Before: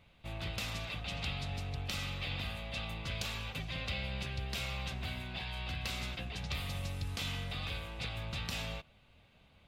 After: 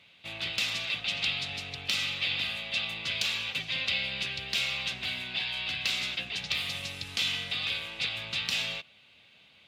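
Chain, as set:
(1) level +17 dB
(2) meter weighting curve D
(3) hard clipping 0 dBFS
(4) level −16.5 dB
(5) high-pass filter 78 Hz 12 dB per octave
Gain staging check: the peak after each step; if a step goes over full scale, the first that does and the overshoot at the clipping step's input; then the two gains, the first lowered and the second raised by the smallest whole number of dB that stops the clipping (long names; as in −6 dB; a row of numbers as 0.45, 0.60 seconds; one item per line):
−3.5, +5.0, 0.0, −16.5, −16.0 dBFS
step 2, 5.0 dB
step 1 +12 dB, step 4 −11.5 dB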